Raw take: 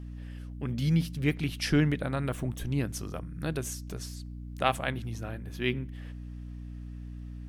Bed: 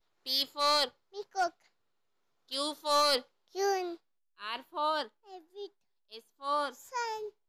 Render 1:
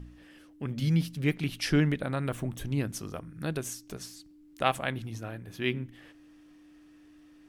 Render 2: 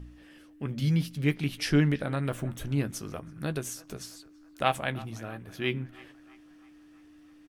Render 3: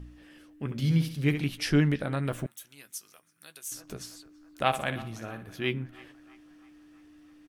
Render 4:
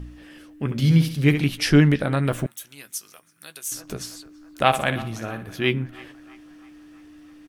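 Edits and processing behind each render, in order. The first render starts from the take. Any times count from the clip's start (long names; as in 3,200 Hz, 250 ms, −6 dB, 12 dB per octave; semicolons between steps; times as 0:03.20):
hum removal 60 Hz, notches 4
double-tracking delay 14 ms −11.5 dB; feedback echo with a band-pass in the loop 328 ms, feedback 64%, band-pass 1,200 Hz, level −18.5 dB
0:00.64–0:01.42: flutter between parallel walls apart 11.6 metres, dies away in 0.47 s; 0:02.46–0:03.72: first difference; 0:04.67–0:05.47: flutter between parallel walls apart 10 metres, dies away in 0.36 s
level +8 dB; brickwall limiter −2 dBFS, peak gain reduction 1 dB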